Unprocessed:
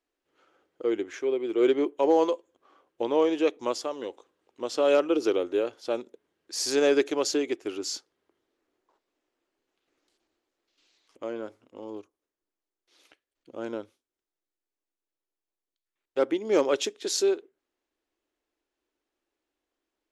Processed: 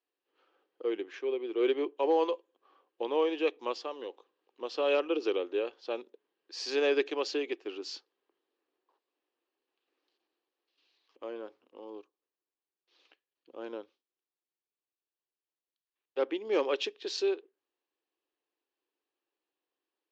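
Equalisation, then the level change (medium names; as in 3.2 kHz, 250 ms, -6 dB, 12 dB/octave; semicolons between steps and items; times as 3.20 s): dynamic bell 2.4 kHz, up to +4 dB, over -44 dBFS, Q 1.6; cabinet simulation 470–4200 Hz, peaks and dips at 630 Hz -8 dB, 910 Hz -3 dB, 1.4 kHz -8 dB, 2.1 kHz -8 dB, 3.5 kHz -4 dB; 0.0 dB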